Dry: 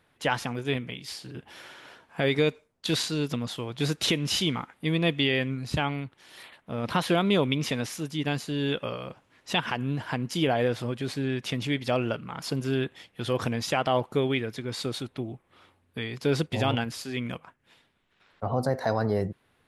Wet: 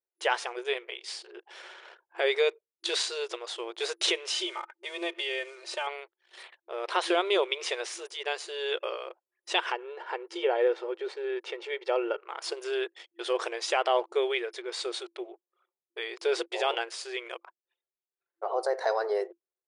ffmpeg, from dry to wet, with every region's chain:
-filter_complex "[0:a]asettb=1/sr,asplit=3[s0][s1][s2];[s0]atrim=end=4.304[s3];[s1]atrim=start=4.3:end=5.87,asetpts=PTS-STARTPTS,afade=t=in:d=0.004:c=qsin,afade=t=out:st=1.566:d=0.004:c=qsin,aecho=1:1:3.3:0.77,atrim=end_sample=69237,acompressor=threshold=0.0282:ratio=2:attack=3.2:release=140:knee=1:detection=peak,acrusher=bits=6:mode=log:mix=0:aa=0.000001[s4];[s2]atrim=start=5.866[s5];[s3][s4]acrossfade=d=0.004:c1=hsin:c2=qsin[s6];[s6][s5]acrossfade=d=0.004:c1=qsin:c2=hsin,asettb=1/sr,asplit=3[s7][s8][s9];[s7]atrim=end=9.724[s10];[s8]atrim=start=9.72:end=12.21,asetpts=PTS-STARTPTS,afade=t=in:d=0.004:c=qsin,afade=t=out:st=2.486:d=0.004:c=qsin,lowpass=f=1500:p=1,aecho=1:1:2.2:0.45,atrim=end_sample=109809[s11];[s9]atrim=start=12.206[s12];[s10][s11]acrossfade=d=0.004:c1=hsin:c2=qsin[s13];[s13][s12]acrossfade=d=0.004:c1=qsin:c2=hsin,anlmdn=0.01,afftfilt=real='re*between(b*sr/4096,340,10000)':imag='im*between(b*sr/4096,340,10000)':win_size=4096:overlap=0.75"

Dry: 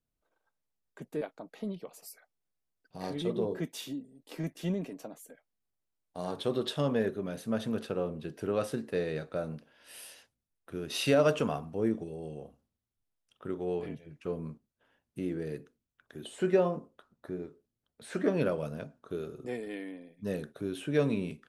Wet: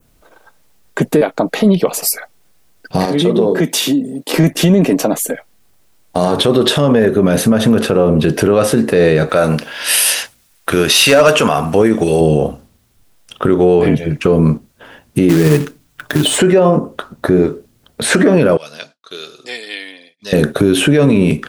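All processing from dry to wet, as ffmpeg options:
-filter_complex "[0:a]asettb=1/sr,asplit=3[s0][s1][s2];[s0]atrim=end=3.054[s3];[s1]atrim=start=3.05:end=4.34,asetpts=PTS-STARTPTS,afade=t=in:d=0.004:c=qsin,afade=t=out:st=1.286:d=0.004:c=qsin,highpass=f=140:w=0.5412,highpass=f=140:w=1.3066,acompressor=threshold=0.00447:ratio=2.5:attack=3.2:release=140:knee=1:detection=peak[s4];[s2]atrim=start=4.336[s5];[s3][s4]acrossfade=d=0.004:c1=hsin:c2=qsin[s6];[s6][s5]acrossfade=d=0.004:c1=qsin:c2=hsin,asettb=1/sr,asplit=3[s7][s8][s9];[s7]atrim=end=9.294[s10];[s8]atrim=start=9.29:end=12.21,asetpts=PTS-STARTPTS,afade=t=in:d=0.004:c=qsin,afade=t=out:st=2.916:d=0.004:c=qsin,tiltshelf=f=700:g=-6.5,asoftclip=type=hard:threshold=0.1[s11];[s9]atrim=start=12.206[s12];[s10][s11]acrossfade=d=0.004:c1=hsin:c2=qsin[s13];[s13][s12]acrossfade=d=0.004:c1=qsin:c2=hsin,asettb=1/sr,asplit=3[s14][s15][s16];[s14]atrim=end=15.294[s17];[s15]atrim=start=15.29:end=16.38,asetpts=PTS-STARTPTS,afade=t=in:d=0.004:c=qsin,afade=t=out:st=1.086:d=0.004:c=qsin,equalizer=f=470:t=o:w=0.32:g=-6,aecho=1:1:6.7:0.62,atrim=end_sample=48069,acrusher=bits=3:mode=log:mix=0:aa=0.000001[s18];[s16]atrim=start=16.376[s19];[s17][s18]acrossfade=d=0.004:c1=hsin:c2=qsin[s20];[s20][s19]acrossfade=d=0.004:c1=qsin:c2=hsin,asettb=1/sr,asplit=3[s21][s22][s23];[s21]atrim=end=18.574[s24];[s22]atrim=start=18.57:end=20.33,asetpts=PTS-STARTPTS,afade=t=in:d=0.004:c=qsin,afade=t=out:st=1.756:d=0.004:c=qsin,agate=range=0.0224:threshold=0.00251:ratio=3:release=100:detection=peak,bandpass=f=4300:t=q:w=2.5[s25];[s23]atrim=start=20.326[s26];[s24][s25]acrossfade=d=0.004:c1=hsin:c2=qsin[s27];[s27][s26]acrossfade=d=0.004:c1=qsin:c2=hsin,adynamicequalizer=threshold=0.00141:dfrequency=4200:dqfactor=1.2:tfrequency=4200:tqfactor=1.2:attack=5:release=100:ratio=0.375:range=2.5:mode=cutabove:tftype=bell,acompressor=threshold=0.0126:ratio=2.5,alimiter=level_in=47.3:limit=0.891:release=50:level=0:latency=1,volume=0.891"

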